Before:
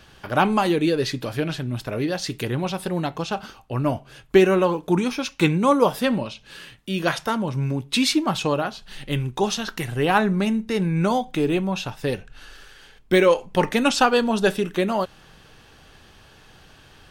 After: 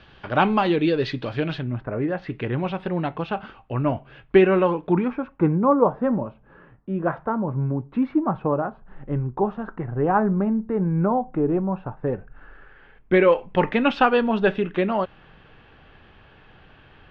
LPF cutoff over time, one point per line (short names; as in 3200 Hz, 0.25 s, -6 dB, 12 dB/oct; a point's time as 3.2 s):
LPF 24 dB/oct
1.58 s 3800 Hz
1.84 s 1600 Hz
2.56 s 2800 Hz
4.87 s 2800 Hz
5.28 s 1300 Hz
11.95 s 1300 Hz
13.46 s 2900 Hz